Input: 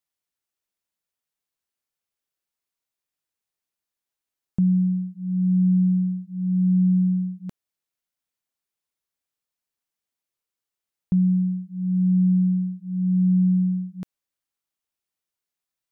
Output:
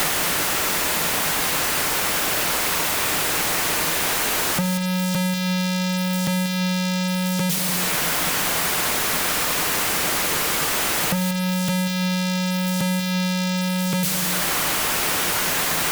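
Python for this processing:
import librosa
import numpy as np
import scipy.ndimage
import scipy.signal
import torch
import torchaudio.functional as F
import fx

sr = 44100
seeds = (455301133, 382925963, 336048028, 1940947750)

y = x + 0.5 * 10.0 ** (-34.0 / 20.0) * np.sign(x)
y = fx.peak_eq(y, sr, hz=160.0, db=13.5, octaves=0.39)
y = fx.quant_dither(y, sr, seeds[0], bits=8, dither='none')
y = fx.low_shelf(y, sr, hz=220.0, db=-10.5)
y = fx.fuzz(y, sr, gain_db=48.0, gate_db=-51.0)
y = y + 10.0 ** (-10.0 / 20.0) * np.pad(y, (int(188 * sr / 1000.0), 0))[:len(y)]
y = fx.room_shoebox(y, sr, seeds[1], volume_m3=1300.0, walls='mixed', distance_m=0.44)
y = fx.band_squash(y, sr, depth_pct=100)
y = F.gain(torch.from_numpy(y), -8.5).numpy()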